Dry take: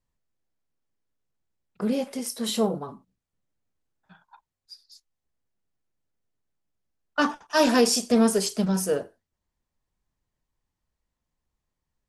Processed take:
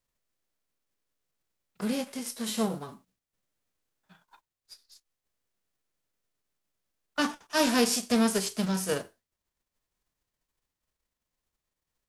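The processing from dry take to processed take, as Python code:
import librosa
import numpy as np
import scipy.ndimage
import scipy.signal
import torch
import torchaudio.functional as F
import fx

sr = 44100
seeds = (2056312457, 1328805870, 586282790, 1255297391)

y = fx.envelope_flatten(x, sr, power=0.6)
y = fx.peak_eq(y, sr, hz=840.0, db=-2.0, octaves=0.38)
y = F.gain(torch.from_numpy(y), -4.5).numpy()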